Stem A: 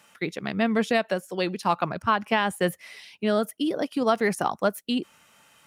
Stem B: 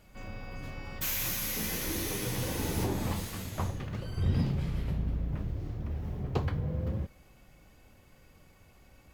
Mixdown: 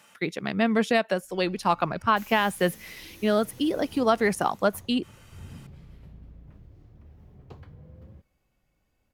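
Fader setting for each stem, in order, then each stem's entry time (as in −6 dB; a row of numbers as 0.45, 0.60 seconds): +0.5, −15.5 decibels; 0.00, 1.15 seconds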